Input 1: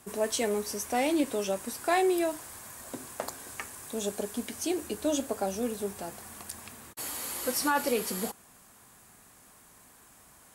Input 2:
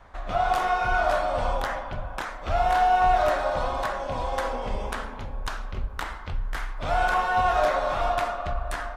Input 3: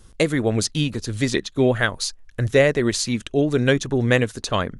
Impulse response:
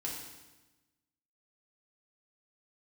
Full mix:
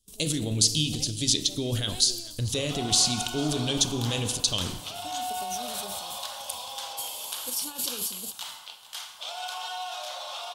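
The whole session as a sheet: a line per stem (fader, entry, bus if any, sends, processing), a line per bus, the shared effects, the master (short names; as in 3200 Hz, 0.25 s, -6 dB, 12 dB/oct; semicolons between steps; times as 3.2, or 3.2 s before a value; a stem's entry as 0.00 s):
-13.0 dB, 0.00 s, bus A, no send, no echo send, auto duck -12 dB, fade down 0.40 s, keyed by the third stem
+2.0 dB, 2.40 s, no bus, send -3.5 dB, echo send -13 dB, limiter -21.5 dBFS, peak gain reduction 10 dB; ladder high-pass 650 Hz, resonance 30%
-12.0 dB, 0.00 s, bus A, send -4.5 dB, echo send -17.5 dB, dry
bus A: 0.0 dB, transient shaper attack +8 dB, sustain +12 dB; limiter -20.5 dBFS, peak gain reduction 10 dB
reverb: on, RT60 1.1 s, pre-delay 3 ms
echo: echo 0.439 s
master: gate with hold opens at -38 dBFS; EQ curve 170 Hz 0 dB, 1900 Hz -14 dB, 3100 Hz +11 dB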